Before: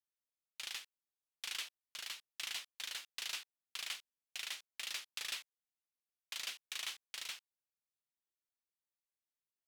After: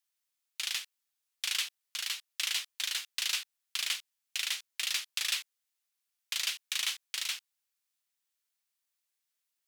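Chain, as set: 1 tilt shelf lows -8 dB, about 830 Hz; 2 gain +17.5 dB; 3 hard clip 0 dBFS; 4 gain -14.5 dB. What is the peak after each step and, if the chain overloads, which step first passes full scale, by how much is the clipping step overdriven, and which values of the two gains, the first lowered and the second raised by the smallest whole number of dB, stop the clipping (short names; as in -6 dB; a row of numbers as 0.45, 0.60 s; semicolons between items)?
-20.0, -2.5, -2.5, -17.0 dBFS; no overload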